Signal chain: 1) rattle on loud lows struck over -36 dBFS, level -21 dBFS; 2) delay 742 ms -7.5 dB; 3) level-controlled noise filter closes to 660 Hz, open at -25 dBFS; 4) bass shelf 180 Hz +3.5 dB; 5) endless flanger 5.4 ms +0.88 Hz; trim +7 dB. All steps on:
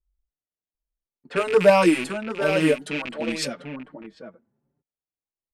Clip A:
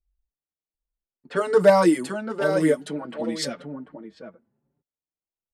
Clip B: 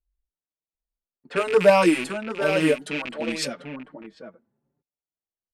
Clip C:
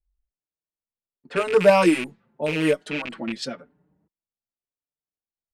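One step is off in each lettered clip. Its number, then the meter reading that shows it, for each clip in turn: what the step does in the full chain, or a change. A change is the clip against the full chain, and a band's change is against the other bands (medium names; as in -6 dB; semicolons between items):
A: 1, 2 kHz band -3.5 dB; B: 4, 125 Hz band -2.0 dB; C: 2, momentary loudness spread change +1 LU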